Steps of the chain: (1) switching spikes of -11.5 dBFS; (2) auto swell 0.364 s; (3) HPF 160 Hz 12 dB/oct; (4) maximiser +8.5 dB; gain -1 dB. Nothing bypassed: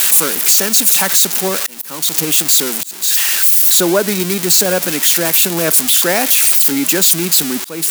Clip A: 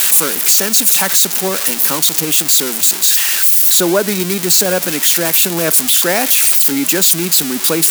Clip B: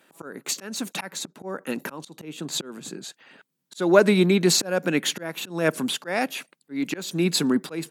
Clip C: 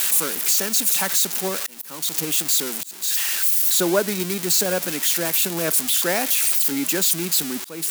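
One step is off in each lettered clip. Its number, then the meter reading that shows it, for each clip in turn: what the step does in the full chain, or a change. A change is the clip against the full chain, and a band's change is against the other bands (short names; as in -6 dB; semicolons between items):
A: 2, momentary loudness spread change -3 LU; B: 1, 8 kHz band -13.5 dB; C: 4, crest factor change +4.0 dB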